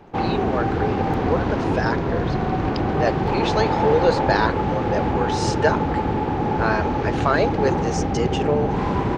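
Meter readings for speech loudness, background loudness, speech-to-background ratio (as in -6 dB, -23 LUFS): -25.0 LUFS, -22.5 LUFS, -2.5 dB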